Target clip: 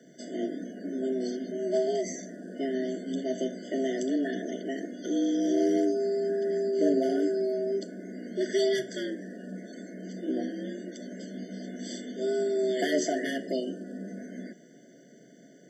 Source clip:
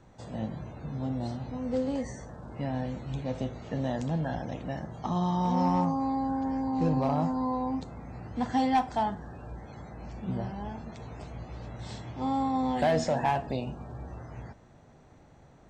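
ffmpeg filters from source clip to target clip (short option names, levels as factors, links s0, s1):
-af "afreqshift=130,bass=f=250:g=-2,treble=f=4000:g=10,afftfilt=real='re*eq(mod(floor(b*sr/1024/720),2),0)':imag='im*eq(mod(floor(b*sr/1024/720),2),0)':win_size=1024:overlap=0.75,volume=1.41"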